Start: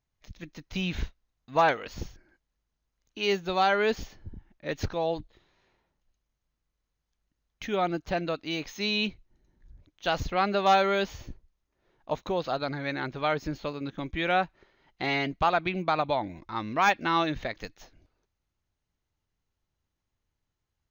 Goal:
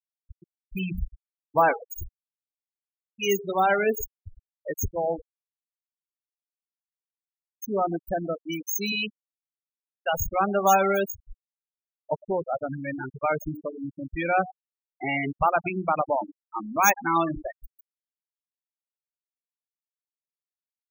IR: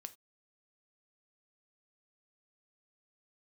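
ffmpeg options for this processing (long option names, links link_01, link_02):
-filter_complex "[0:a]asplit=2[link_01][link_02];[1:a]atrim=start_sample=2205,highshelf=frequency=11000:gain=-3[link_03];[link_02][link_03]afir=irnorm=-1:irlink=0,volume=-3dB[link_04];[link_01][link_04]amix=inputs=2:normalize=0,aexciter=amount=14.8:drive=4.2:freq=6200,asettb=1/sr,asplit=3[link_05][link_06][link_07];[link_05]atrim=end=8.924[link_08];[link_06]atrim=start=8.92:end=10.13,asetpts=PTS-STARTPTS,afade=type=in:duration=0.004:curve=qsin,afade=type=out:start_time=1.206:duration=0.004:curve=qsin,highpass=320[link_09];[link_07]atrim=start=10.126[link_10];[link_08][link_09]acrossfade=duration=0.004:curve1=hsin:curve2=qsin[link_11];[link_11][link_10]acrossfade=duration=0.004:curve1=qsin:curve2=hsin,bandreject=frequency=60:width_type=h:width=6,bandreject=frequency=120:width_type=h:width=6,bandreject=frequency=180:width_type=h:width=6,bandreject=frequency=240:width_type=h:width=6,bandreject=frequency=300:width_type=h:width=6,bandreject=frequency=360:width_type=h:width=6,bandreject=frequency=420:width_type=h:width=6,bandreject=frequency=480:width_type=h:width=6,asplit=2[link_12][link_13];[link_13]aecho=0:1:108|216|324|432|540:0.158|0.0824|0.0429|0.0223|0.0116[link_14];[link_12][link_14]amix=inputs=2:normalize=0,afftfilt=real='re*gte(hypot(re,im),0.141)':imag='im*gte(hypot(re,im),0.141)':win_size=1024:overlap=0.75"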